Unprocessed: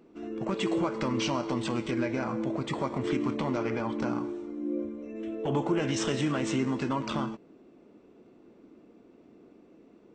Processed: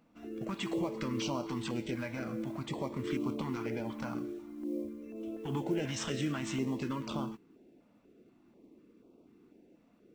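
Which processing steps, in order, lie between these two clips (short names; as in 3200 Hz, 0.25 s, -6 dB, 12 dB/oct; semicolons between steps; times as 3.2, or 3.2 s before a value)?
modulation noise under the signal 33 dB; stepped notch 4.1 Hz 380–1800 Hz; gain -4.5 dB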